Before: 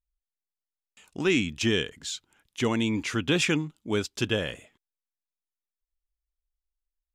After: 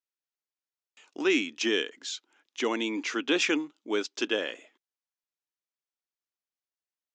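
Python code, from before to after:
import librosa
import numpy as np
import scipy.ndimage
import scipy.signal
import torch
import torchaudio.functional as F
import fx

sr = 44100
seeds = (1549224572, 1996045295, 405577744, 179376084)

y = scipy.signal.sosfilt(scipy.signal.ellip(3, 1.0, 40, [290.0, 6400.0], 'bandpass', fs=sr, output='sos'), x)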